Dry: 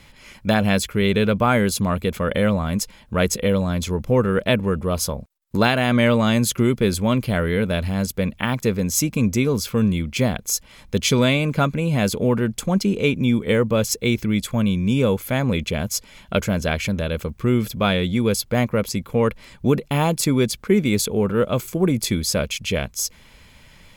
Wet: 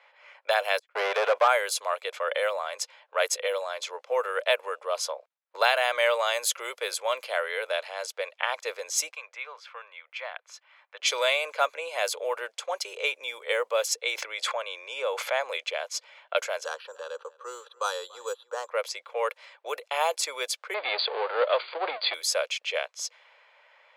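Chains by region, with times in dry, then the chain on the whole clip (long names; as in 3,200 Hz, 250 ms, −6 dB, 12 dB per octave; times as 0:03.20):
0:00.79–0:01.48: de-essing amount 80% + noise gate −29 dBFS, range −37 dB + mid-hump overdrive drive 25 dB, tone 1,300 Hz, clips at −7 dBFS
0:09.11–0:11.00: high-pass filter 1,100 Hz + high-shelf EQ 3,800 Hz −10.5 dB
0:14.12–0:15.41: high-pass filter 730 Hz 6 dB per octave + spectral tilt −2.5 dB per octave + envelope flattener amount 70%
0:16.65–0:18.70: phaser with its sweep stopped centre 440 Hz, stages 8 + single-tap delay 288 ms −22 dB + bad sample-rate conversion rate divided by 6×, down filtered, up hold
0:20.74–0:22.14: low shelf with overshoot 140 Hz −12 dB, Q 3 + power curve on the samples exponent 0.7 + linear-phase brick-wall low-pass 4,800 Hz
whole clip: low-pass that shuts in the quiet parts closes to 1,900 Hz, open at −14 dBFS; Butterworth high-pass 520 Hz 48 dB per octave; level −2.5 dB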